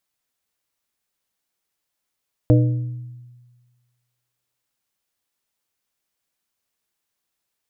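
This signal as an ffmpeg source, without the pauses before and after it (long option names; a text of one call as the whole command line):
ffmpeg -f lavfi -i "aevalsrc='0.316*pow(10,-3*t/1.47)*sin(2*PI*122*t)+0.2*pow(10,-3*t/0.774)*sin(2*PI*305*t)+0.126*pow(10,-3*t/0.557)*sin(2*PI*488*t)+0.0794*pow(10,-3*t/0.476)*sin(2*PI*610*t)':duration=3.42:sample_rate=44100" out.wav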